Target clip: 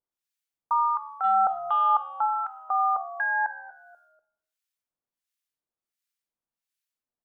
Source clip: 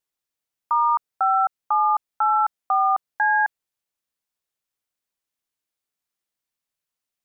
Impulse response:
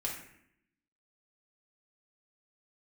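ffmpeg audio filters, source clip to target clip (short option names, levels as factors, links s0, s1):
-filter_complex "[0:a]asplit=3[s0][s1][s2];[s0]afade=t=out:st=1.23:d=0.02[s3];[s1]acontrast=40,afade=t=in:st=1.23:d=0.02,afade=t=out:st=2.08:d=0.02[s4];[s2]afade=t=in:st=2.08:d=0.02[s5];[s3][s4][s5]amix=inputs=3:normalize=0,acrossover=split=1300[s6][s7];[s6]aeval=exprs='val(0)*(1-1/2+1/2*cos(2*PI*1.4*n/s))':c=same[s8];[s7]aeval=exprs='val(0)*(1-1/2-1/2*cos(2*PI*1.4*n/s))':c=same[s9];[s8][s9]amix=inputs=2:normalize=0,asplit=4[s10][s11][s12][s13];[s11]adelay=243,afreqshift=-75,volume=0.126[s14];[s12]adelay=486,afreqshift=-150,volume=0.0403[s15];[s13]adelay=729,afreqshift=-225,volume=0.0129[s16];[s10][s14][s15][s16]amix=inputs=4:normalize=0,asplit=2[s17][s18];[1:a]atrim=start_sample=2205[s19];[s18][s19]afir=irnorm=-1:irlink=0,volume=0.316[s20];[s17][s20]amix=inputs=2:normalize=0,volume=0.75"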